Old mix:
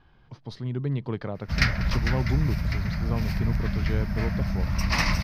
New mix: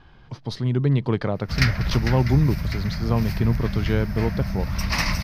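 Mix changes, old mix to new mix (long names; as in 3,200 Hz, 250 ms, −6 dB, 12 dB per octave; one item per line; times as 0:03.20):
speech +8.0 dB
master: add high-shelf EQ 6,800 Hz +7.5 dB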